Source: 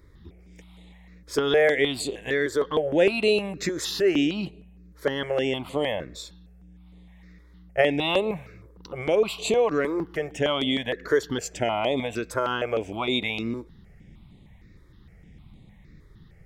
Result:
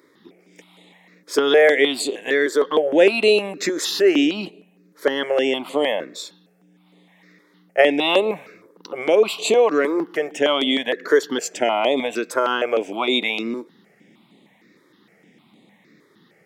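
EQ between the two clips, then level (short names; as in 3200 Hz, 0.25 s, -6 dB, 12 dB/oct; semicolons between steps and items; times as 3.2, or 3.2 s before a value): HPF 240 Hz 24 dB/oct; +6.0 dB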